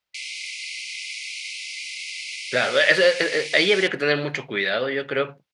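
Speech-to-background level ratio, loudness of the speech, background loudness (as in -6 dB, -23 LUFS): 10.0 dB, -21.0 LUFS, -31.0 LUFS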